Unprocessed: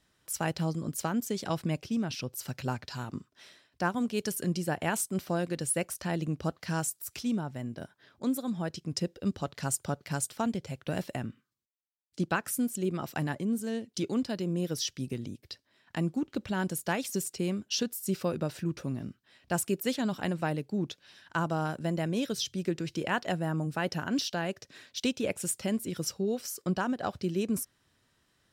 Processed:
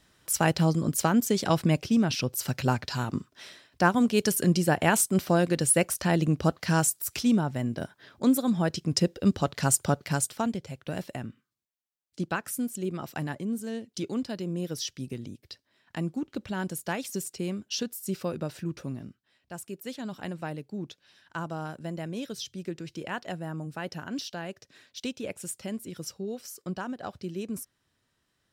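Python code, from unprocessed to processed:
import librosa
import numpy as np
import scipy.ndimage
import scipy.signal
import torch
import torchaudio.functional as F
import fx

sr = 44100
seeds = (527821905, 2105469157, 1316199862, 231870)

y = fx.gain(x, sr, db=fx.line((9.94, 7.5), (10.7, -1.0), (18.9, -1.0), (19.52, -11.0), (20.21, -4.5)))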